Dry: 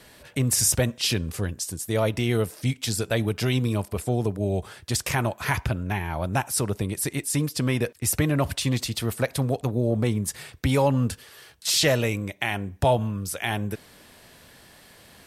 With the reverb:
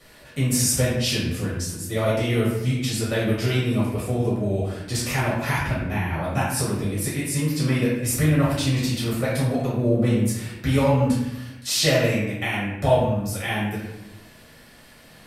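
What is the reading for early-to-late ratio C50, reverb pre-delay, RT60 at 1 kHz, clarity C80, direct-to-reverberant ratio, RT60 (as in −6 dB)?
0.5 dB, 3 ms, 0.90 s, 4.0 dB, −9.0 dB, 0.95 s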